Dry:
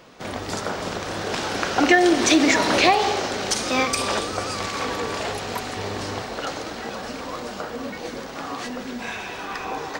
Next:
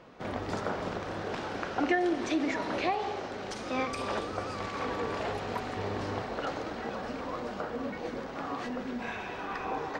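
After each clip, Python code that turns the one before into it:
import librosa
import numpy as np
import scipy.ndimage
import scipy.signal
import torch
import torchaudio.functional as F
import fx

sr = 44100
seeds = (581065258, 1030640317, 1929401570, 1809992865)

y = fx.high_shelf(x, sr, hz=3000.0, db=-9.5)
y = fx.rider(y, sr, range_db=5, speed_s=2.0)
y = fx.high_shelf(y, sr, hz=6800.0, db=-10.0)
y = F.gain(torch.from_numpy(y), -8.5).numpy()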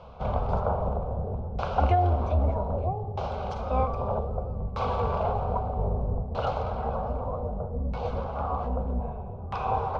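y = fx.octave_divider(x, sr, octaves=2, level_db=2.0)
y = fx.fixed_phaser(y, sr, hz=760.0, stages=4)
y = fx.filter_lfo_lowpass(y, sr, shape='saw_down', hz=0.63, low_hz=270.0, high_hz=3500.0, q=0.78)
y = F.gain(torch.from_numpy(y), 8.5).numpy()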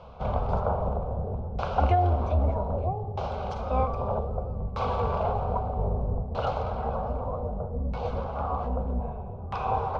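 y = x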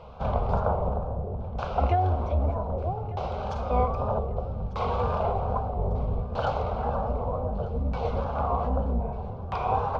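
y = fx.rider(x, sr, range_db=10, speed_s=2.0)
y = fx.wow_flutter(y, sr, seeds[0], rate_hz=2.1, depth_cents=74.0)
y = fx.echo_feedback(y, sr, ms=1196, feedback_pct=48, wet_db=-19.0)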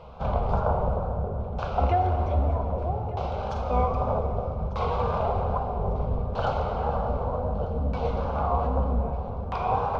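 y = fx.rev_plate(x, sr, seeds[1], rt60_s=3.3, hf_ratio=0.75, predelay_ms=0, drr_db=5.5)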